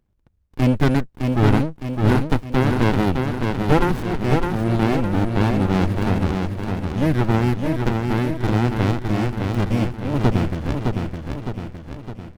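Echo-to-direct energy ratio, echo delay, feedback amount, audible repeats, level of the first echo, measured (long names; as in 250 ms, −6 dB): −3.0 dB, 611 ms, 52%, 6, −4.5 dB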